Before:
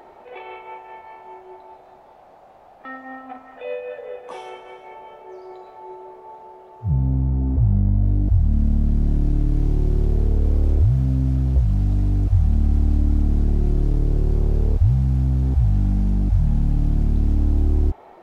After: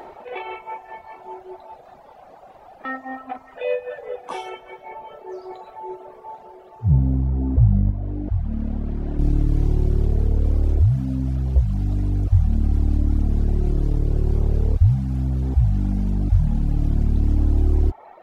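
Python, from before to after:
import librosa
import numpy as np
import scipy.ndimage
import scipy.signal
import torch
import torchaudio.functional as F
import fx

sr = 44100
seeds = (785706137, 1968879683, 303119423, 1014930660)

y = fx.dereverb_blind(x, sr, rt60_s=1.6)
y = fx.bass_treble(y, sr, bass_db=-9, treble_db=-14, at=(7.91, 9.19))
y = fx.rider(y, sr, range_db=3, speed_s=2.0)
y = F.gain(torch.from_numpy(y), 3.5).numpy()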